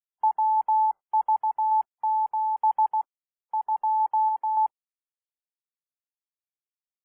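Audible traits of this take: a quantiser's noise floor 10-bit, dither none; random-step tremolo 3.5 Hz; MP3

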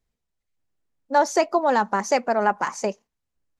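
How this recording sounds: noise floor -82 dBFS; spectral tilt -3.5 dB/oct

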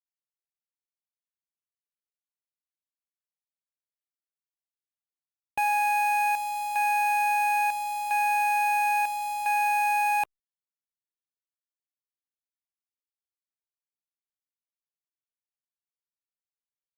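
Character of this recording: chopped level 0.74 Hz, depth 60%, duty 70%; a quantiser's noise floor 6-bit, dither none; Opus

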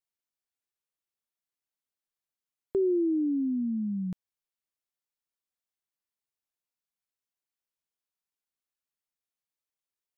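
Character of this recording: noise floor -93 dBFS; spectral tilt +3.0 dB/oct

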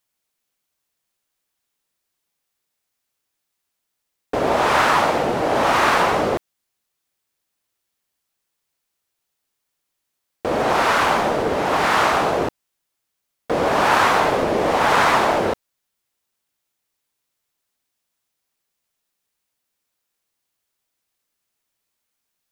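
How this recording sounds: noise floor -78 dBFS; spectral tilt -4.0 dB/oct

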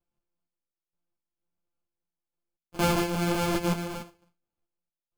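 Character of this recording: a buzz of ramps at a fixed pitch in blocks of 256 samples; random-step tremolo 4.3 Hz, depth 90%; aliases and images of a low sample rate 1900 Hz, jitter 0%; a shimmering, thickened sound

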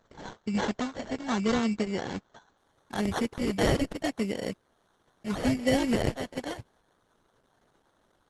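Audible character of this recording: a quantiser's noise floor 12-bit, dither triangular; phasing stages 2, 0.74 Hz, lowest notch 420–1000 Hz; aliases and images of a low sample rate 2500 Hz, jitter 0%; Opus

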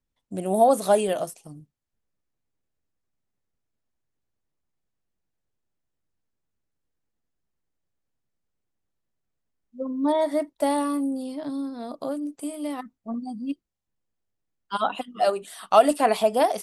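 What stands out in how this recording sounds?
noise floor -80 dBFS; spectral tilt -4.0 dB/oct

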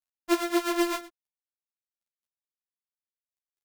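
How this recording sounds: a buzz of ramps at a fixed pitch in blocks of 128 samples; random-step tremolo 4 Hz, depth 70%; a quantiser's noise floor 12-bit, dither none; a shimmering, thickened sound

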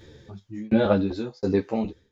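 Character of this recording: tremolo saw down 1.4 Hz, depth 100%; a shimmering, thickened sound

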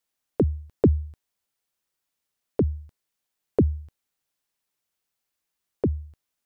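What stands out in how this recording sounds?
noise floor -83 dBFS; spectral tilt -9.5 dB/oct

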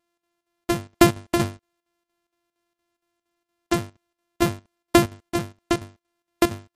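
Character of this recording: a buzz of ramps at a fixed pitch in blocks of 128 samples; chopped level 4.3 Hz, depth 65%, duty 75%; MP3

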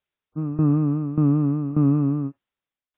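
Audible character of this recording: tremolo saw down 1.7 Hz, depth 85%; MP3

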